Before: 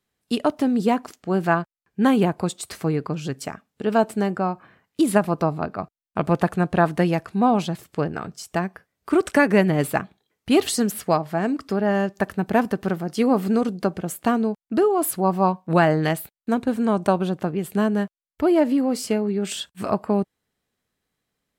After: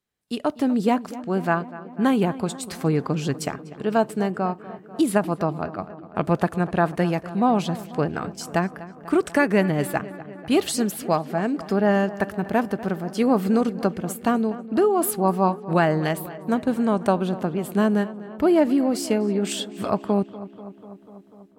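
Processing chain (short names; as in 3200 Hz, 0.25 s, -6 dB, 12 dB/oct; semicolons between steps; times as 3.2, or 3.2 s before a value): AGC; darkening echo 0.246 s, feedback 72%, low-pass 3300 Hz, level -16.5 dB; gain -6.5 dB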